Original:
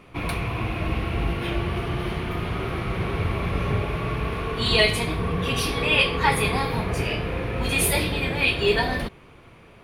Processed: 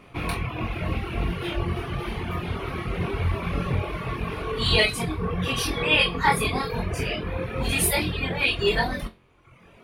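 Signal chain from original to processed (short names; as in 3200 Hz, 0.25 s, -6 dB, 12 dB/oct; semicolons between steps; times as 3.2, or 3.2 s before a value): flutter echo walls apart 3.9 m, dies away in 0.27 s; reverb removal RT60 1.1 s; gain -1 dB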